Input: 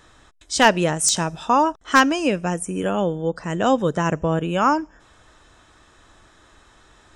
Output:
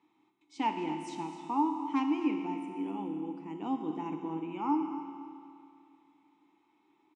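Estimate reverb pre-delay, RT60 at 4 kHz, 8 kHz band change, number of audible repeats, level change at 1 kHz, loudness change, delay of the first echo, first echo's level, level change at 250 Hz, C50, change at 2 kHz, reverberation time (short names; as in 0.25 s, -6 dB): 6 ms, 2.4 s, under -30 dB, 1, -13.5 dB, -14.0 dB, 0.258 s, -13.5 dB, -8.5 dB, 5.5 dB, -25.0 dB, 2.5 s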